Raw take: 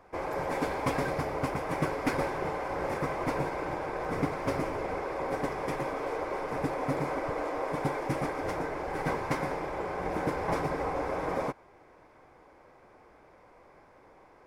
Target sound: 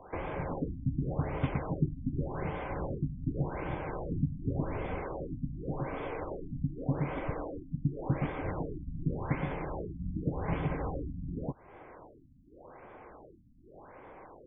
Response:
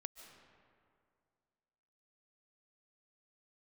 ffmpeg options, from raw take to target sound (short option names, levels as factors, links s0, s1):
-filter_complex "[0:a]acrossover=split=220|3000[s0][s1][s2];[s1]acompressor=threshold=0.00631:ratio=6[s3];[s0][s3][s2]amix=inputs=3:normalize=0,afftfilt=real='re*lt(b*sr/1024,260*pow(3600/260,0.5+0.5*sin(2*PI*0.87*pts/sr)))':imag='im*lt(b*sr/1024,260*pow(3600/260,0.5+0.5*sin(2*PI*0.87*pts/sr)))':win_size=1024:overlap=0.75,volume=2"